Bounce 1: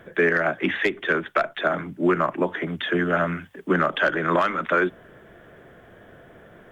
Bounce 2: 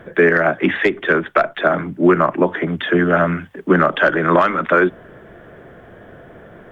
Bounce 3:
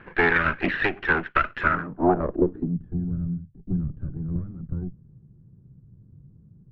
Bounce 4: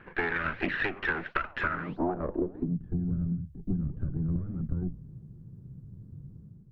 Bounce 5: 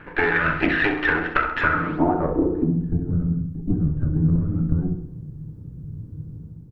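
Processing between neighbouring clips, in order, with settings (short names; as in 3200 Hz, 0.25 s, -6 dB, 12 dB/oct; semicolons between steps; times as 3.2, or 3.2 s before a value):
high shelf 2700 Hz -9 dB; gain +8 dB
minimum comb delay 0.68 ms; low-pass sweep 2300 Hz -> 140 Hz, 1.61–2.89; gain -8 dB
AGC gain up to 9 dB; flange 1.5 Hz, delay 2 ms, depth 9.2 ms, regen -90%; compressor 12:1, threshold -26 dBFS, peak gain reduction 14 dB
feedback echo 66 ms, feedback 55%, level -10.5 dB; FDN reverb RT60 0.57 s, low-frequency decay 1×, high-frequency decay 0.35×, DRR 4.5 dB; gain +8 dB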